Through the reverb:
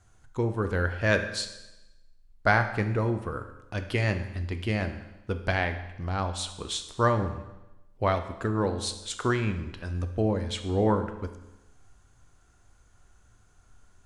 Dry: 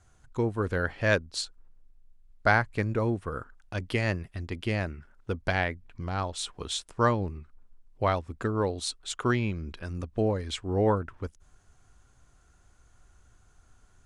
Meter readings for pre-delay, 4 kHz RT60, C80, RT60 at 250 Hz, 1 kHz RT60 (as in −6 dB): 10 ms, 0.95 s, 12.0 dB, 1.0 s, 1.0 s